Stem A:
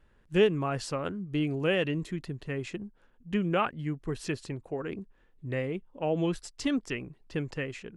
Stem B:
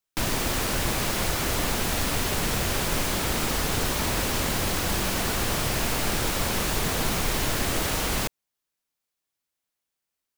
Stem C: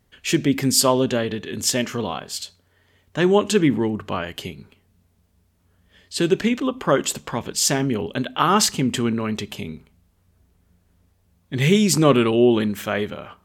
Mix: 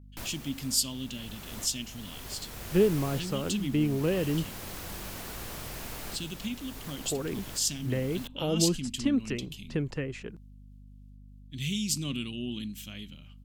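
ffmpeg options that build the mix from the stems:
-filter_complex "[0:a]acrossover=split=460[a][b];[b]acompressor=threshold=-42dB:ratio=4[c];[a][c]amix=inputs=2:normalize=0,adelay=2400,volume=3dB,asplit=3[d][e][f];[d]atrim=end=4.45,asetpts=PTS-STARTPTS,afade=t=out:st=4.446:d=0.004:c=hsin[g];[e]atrim=start=4.45:end=7.04,asetpts=PTS-STARTPTS,volume=0[h];[f]atrim=start=7.04,asetpts=PTS-STARTPTS,afade=t=in:d=0.004:c=hsin[i];[g][h][i]concat=n=3:v=0:a=1[j];[1:a]equalizer=f=14k:t=o:w=0.52:g=5.5,volume=-14.5dB[k];[2:a]agate=range=-33dB:threshold=-57dB:ratio=3:detection=peak,firequalizer=gain_entry='entry(270,0);entry(400,-18);entry(1700,-13);entry(2800,6)':delay=0.05:min_phase=1,volume=-14.5dB,asplit=2[l][m];[m]apad=whole_len=457406[n];[k][n]sidechaincompress=threshold=-38dB:ratio=10:attack=22:release=786[o];[j][o][l]amix=inputs=3:normalize=0,aeval=exprs='val(0)+0.00355*(sin(2*PI*50*n/s)+sin(2*PI*2*50*n/s)/2+sin(2*PI*3*50*n/s)/3+sin(2*PI*4*50*n/s)/4+sin(2*PI*5*50*n/s)/5)':c=same"

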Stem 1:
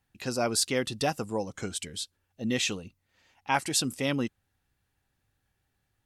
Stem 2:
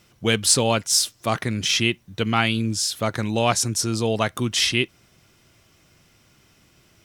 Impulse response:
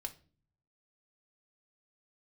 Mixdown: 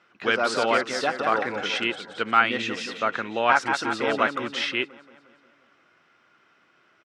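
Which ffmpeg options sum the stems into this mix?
-filter_complex "[0:a]volume=1.5dB,asplit=2[a][b];[b]volume=-4.5dB[c];[1:a]volume=-3dB[d];[c]aecho=0:1:178|356|534|712|890|1068|1246|1424|1602:1|0.58|0.336|0.195|0.113|0.0656|0.0381|0.0221|0.0128[e];[a][d][e]amix=inputs=3:normalize=0,highpass=330,lowpass=2.8k,equalizer=f=1.4k:w=2:g=10"

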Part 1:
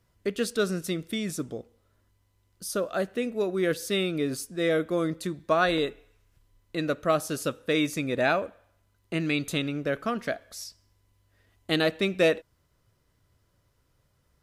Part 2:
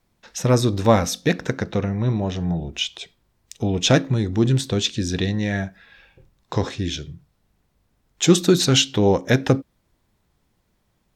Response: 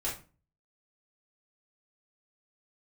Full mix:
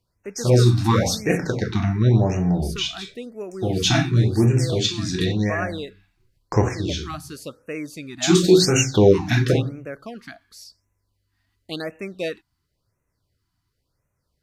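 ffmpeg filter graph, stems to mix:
-filter_complex "[0:a]volume=-5.5dB,asplit=2[a][b];[1:a]agate=range=-33dB:threshold=-38dB:ratio=3:detection=peak,volume=0dB,asplit=2[c][d];[d]volume=-6dB[e];[b]apad=whole_len=491866[f];[c][f]sidechaincompress=threshold=-39dB:ratio=8:attack=16:release=591[g];[2:a]atrim=start_sample=2205[h];[e][h]afir=irnorm=-1:irlink=0[i];[a][g][i]amix=inputs=3:normalize=0,equalizer=f=4.5k:t=o:w=0.23:g=9,afftfilt=real='re*(1-between(b*sr/1024,450*pow(4100/450,0.5+0.5*sin(2*PI*0.94*pts/sr))/1.41,450*pow(4100/450,0.5+0.5*sin(2*PI*0.94*pts/sr))*1.41))':imag='im*(1-between(b*sr/1024,450*pow(4100/450,0.5+0.5*sin(2*PI*0.94*pts/sr))/1.41,450*pow(4100/450,0.5+0.5*sin(2*PI*0.94*pts/sr))*1.41))':win_size=1024:overlap=0.75"

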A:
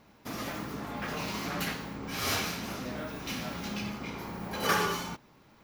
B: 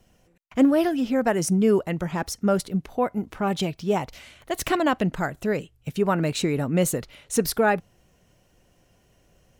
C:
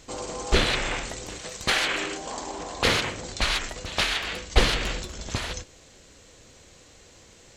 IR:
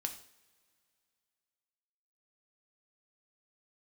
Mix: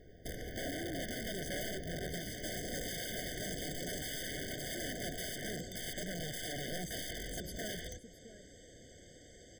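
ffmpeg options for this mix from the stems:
-filter_complex "[0:a]asubboost=boost=7.5:cutoff=56,acompressor=threshold=-42dB:ratio=5,aeval=exprs='val(0)*sin(2*PI*210*n/s)':c=same,volume=1.5dB,asplit=2[a][b];[b]volume=-11dB[c];[1:a]acompressor=threshold=-22dB:ratio=5,volume=-17dB,asplit=2[d][e];[e]volume=-17.5dB[f];[2:a]lowshelf=f=170:g=-10,acompressor=threshold=-45dB:ratio=1.5,aeval=exprs='clip(val(0),-1,0.00944)':c=same,adelay=2350,volume=-4dB[g];[c][f]amix=inputs=2:normalize=0,aecho=0:1:666:1[h];[a][d][g][h]amix=inputs=4:normalize=0,lowshelf=f=370:g=8.5,aeval=exprs='(mod(42.2*val(0)+1,2)-1)/42.2':c=same,afftfilt=real='re*eq(mod(floor(b*sr/1024/740),2),0)':imag='im*eq(mod(floor(b*sr/1024/740),2),0)':win_size=1024:overlap=0.75"

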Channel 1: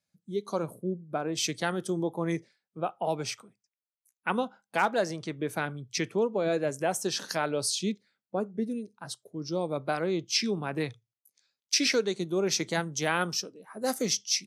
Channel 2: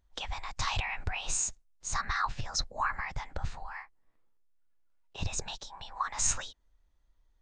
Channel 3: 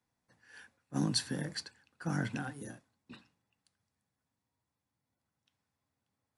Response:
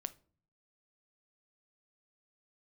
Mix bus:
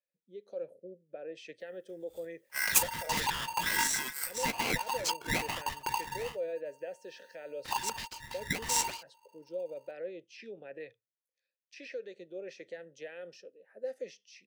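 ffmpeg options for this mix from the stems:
-filter_complex "[0:a]alimiter=limit=-23.5dB:level=0:latency=1:release=61,asplit=3[a][b][c];[a]bandpass=f=530:t=q:w=8,volume=0dB[d];[b]bandpass=f=1.84k:t=q:w=8,volume=-6dB[e];[c]bandpass=f=2.48k:t=q:w=8,volume=-9dB[f];[d][e][f]amix=inputs=3:normalize=0,volume=0.5dB,asplit=2[g][h];[1:a]aeval=exprs='val(0)*sgn(sin(2*PI*920*n/s))':c=same,adelay=2500,volume=-1dB[i];[2:a]aexciter=amount=8.4:drive=6.8:freq=8.4k,aeval=exprs='val(0)*sgn(sin(2*PI*1800*n/s))':c=same,adelay=1600,volume=1dB[j];[h]apad=whole_len=351602[k];[j][k]sidechaincompress=threshold=-50dB:ratio=12:attack=7.9:release=445[l];[g][i][l]amix=inputs=3:normalize=0"

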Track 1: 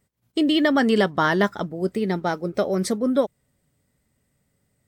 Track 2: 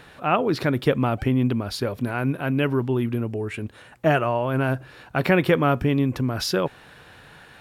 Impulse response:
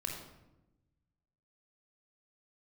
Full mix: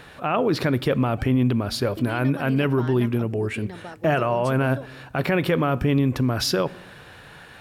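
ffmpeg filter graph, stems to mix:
-filter_complex "[0:a]acompressor=threshold=-26dB:ratio=4,adelay=1600,volume=-9dB[a];[1:a]alimiter=limit=-15dB:level=0:latency=1:release=33,volume=2dB,asplit=2[b][c];[c]volume=-18.5dB[d];[2:a]atrim=start_sample=2205[e];[d][e]afir=irnorm=-1:irlink=0[f];[a][b][f]amix=inputs=3:normalize=0"

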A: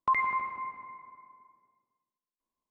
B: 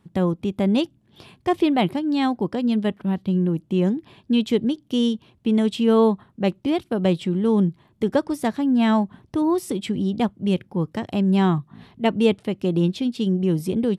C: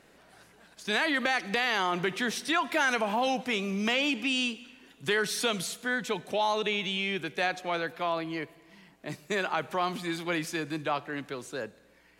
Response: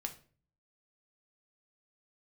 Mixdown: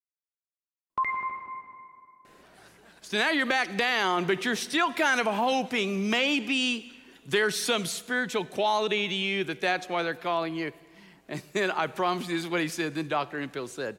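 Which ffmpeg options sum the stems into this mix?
-filter_complex "[0:a]adelay=900,volume=-1.5dB[a];[2:a]adelay=2250,volume=2dB[b];[a][b]amix=inputs=2:normalize=0,equalizer=f=370:t=o:w=0.22:g=4"

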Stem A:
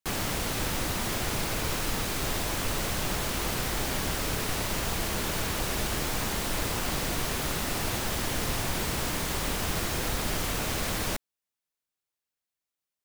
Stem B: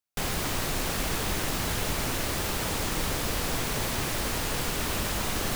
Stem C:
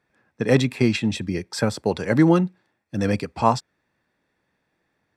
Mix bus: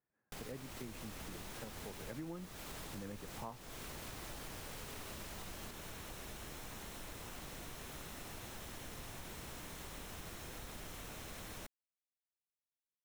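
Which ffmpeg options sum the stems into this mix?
-filter_complex "[0:a]bandreject=f=4.7k:w=12,adelay=500,volume=-16.5dB[a];[1:a]alimiter=limit=-21.5dB:level=0:latency=1,adelay=150,volume=-14dB[b];[2:a]lowpass=1.9k,volume=-14dB,afade=t=in:st=1.9:d=0.44:silence=0.473151[c];[a][b][c]amix=inputs=3:normalize=0,acompressor=threshold=-44dB:ratio=5"

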